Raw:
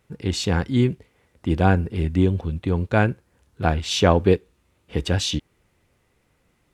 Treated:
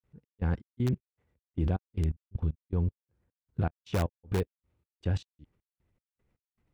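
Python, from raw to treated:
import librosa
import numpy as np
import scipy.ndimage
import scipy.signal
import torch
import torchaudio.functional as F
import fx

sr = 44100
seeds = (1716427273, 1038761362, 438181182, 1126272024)

p1 = fx.high_shelf(x, sr, hz=3600.0, db=-10.0)
p2 = fx.granulator(p1, sr, seeds[0], grain_ms=249.0, per_s=2.6, spray_ms=100.0, spread_st=0)
p3 = fx.low_shelf(p2, sr, hz=190.0, db=10.0)
p4 = (np.mod(10.0 ** (6.5 / 20.0) * p3 + 1.0, 2.0) - 1.0) / 10.0 ** (6.5 / 20.0)
p5 = p3 + (p4 * 10.0 ** (-7.5 / 20.0))
p6 = fx.level_steps(p5, sr, step_db=24)
y = p6 * 10.0 ** (-2.0 / 20.0)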